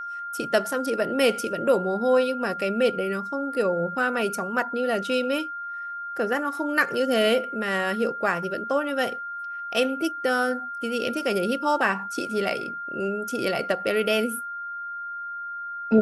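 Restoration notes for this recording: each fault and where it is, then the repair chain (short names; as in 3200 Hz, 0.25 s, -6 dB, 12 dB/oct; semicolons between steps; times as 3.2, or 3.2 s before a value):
tone 1400 Hz -31 dBFS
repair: notch 1400 Hz, Q 30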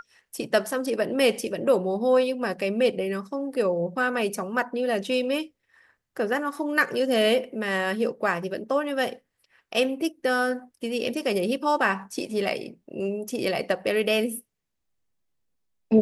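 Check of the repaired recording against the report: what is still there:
none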